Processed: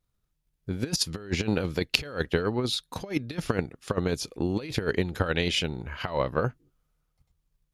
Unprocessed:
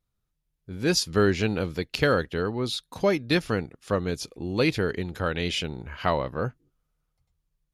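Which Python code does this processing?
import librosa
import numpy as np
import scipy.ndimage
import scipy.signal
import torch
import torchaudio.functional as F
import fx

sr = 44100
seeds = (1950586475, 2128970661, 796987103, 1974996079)

y = fx.over_compress(x, sr, threshold_db=-27.0, ratio=-0.5)
y = fx.transient(y, sr, attack_db=8, sustain_db=2)
y = y * librosa.db_to_amplitude(-2.5)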